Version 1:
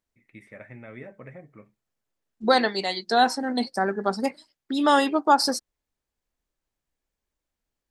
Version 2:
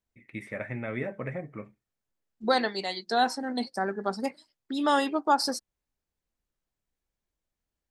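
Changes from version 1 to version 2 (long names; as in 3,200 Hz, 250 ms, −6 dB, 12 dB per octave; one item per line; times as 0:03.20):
first voice +8.5 dB
second voice −5.0 dB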